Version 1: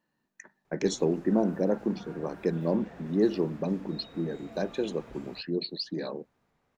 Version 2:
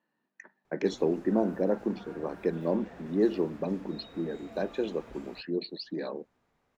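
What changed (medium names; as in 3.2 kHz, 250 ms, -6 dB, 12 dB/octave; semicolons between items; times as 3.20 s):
speech: add band-pass 170–3400 Hz; master: add peaking EQ 140 Hz -3 dB 0.89 oct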